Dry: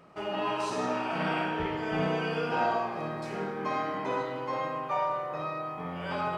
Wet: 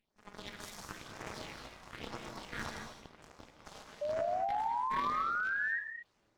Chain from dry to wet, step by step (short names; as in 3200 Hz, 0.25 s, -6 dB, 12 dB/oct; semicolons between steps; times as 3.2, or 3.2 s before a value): ending faded out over 0.77 s; Bessel high-pass 150 Hz, order 8; bell 5800 Hz +10 dB 2.1 oct; split-band echo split 1500 Hz, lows 0.615 s, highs 0.367 s, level -14.5 dB; full-wave rectifier; phaser stages 4, 1 Hz, lowest notch 310–3600 Hz; added harmonics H 2 -7 dB, 3 -32 dB, 5 -33 dB, 7 -14 dB, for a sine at -14.5 dBFS; AM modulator 210 Hz, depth 90%; painted sound rise, 4.01–5.79, 580–1900 Hz -26 dBFS; non-linear reverb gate 0.25 s rising, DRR 4.5 dB; gain -9 dB